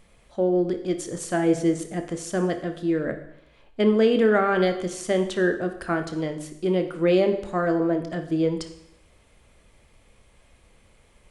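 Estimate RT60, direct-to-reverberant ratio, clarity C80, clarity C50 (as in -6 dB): 0.75 s, 6.5 dB, 13.0 dB, 10.0 dB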